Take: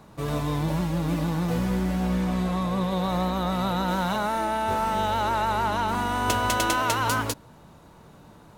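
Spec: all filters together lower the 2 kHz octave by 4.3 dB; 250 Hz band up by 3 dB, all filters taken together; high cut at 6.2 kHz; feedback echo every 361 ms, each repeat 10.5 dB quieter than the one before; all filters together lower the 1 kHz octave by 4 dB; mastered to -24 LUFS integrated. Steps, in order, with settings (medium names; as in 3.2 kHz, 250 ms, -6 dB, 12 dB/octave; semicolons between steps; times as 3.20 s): low-pass 6.2 kHz; peaking EQ 250 Hz +5 dB; peaking EQ 1 kHz -4 dB; peaking EQ 2 kHz -4.5 dB; feedback delay 361 ms, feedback 30%, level -10.5 dB; trim +1.5 dB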